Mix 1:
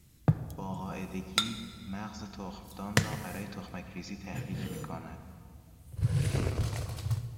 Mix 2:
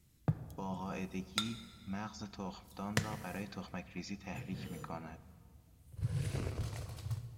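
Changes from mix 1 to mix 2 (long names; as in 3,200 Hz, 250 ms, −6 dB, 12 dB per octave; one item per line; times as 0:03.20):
speech: send −11.0 dB
background −8.0 dB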